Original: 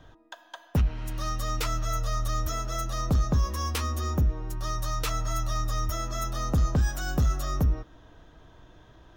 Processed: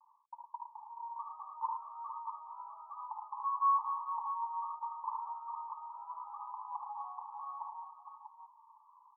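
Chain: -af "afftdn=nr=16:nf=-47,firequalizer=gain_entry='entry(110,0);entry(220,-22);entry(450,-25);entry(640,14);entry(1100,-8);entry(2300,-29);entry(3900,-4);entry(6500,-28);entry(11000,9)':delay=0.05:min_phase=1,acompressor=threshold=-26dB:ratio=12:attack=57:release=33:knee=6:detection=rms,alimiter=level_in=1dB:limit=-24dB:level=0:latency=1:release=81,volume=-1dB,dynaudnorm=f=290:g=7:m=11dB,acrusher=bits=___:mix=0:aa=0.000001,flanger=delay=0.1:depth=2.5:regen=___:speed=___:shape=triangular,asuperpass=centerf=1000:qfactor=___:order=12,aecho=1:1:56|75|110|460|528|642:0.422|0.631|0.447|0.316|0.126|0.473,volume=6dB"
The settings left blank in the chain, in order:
8, -38, 0.71, 3.3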